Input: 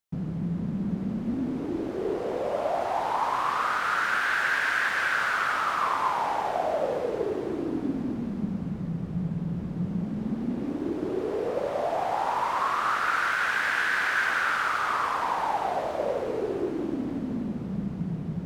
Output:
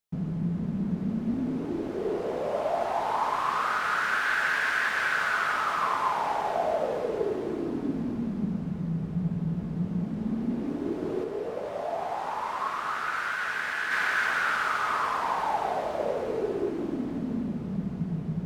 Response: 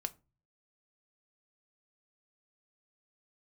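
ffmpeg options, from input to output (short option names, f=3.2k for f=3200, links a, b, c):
-filter_complex "[0:a]asplit=3[a][b][c];[a]afade=t=out:st=11.23:d=0.02[d];[b]flanger=delay=9.5:depth=3.6:regen=-45:speed=1.2:shape=triangular,afade=t=in:st=11.23:d=0.02,afade=t=out:st=13.9:d=0.02[e];[c]afade=t=in:st=13.9:d=0.02[f];[d][e][f]amix=inputs=3:normalize=0[g];[1:a]atrim=start_sample=2205[h];[g][h]afir=irnorm=-1:irlink=0"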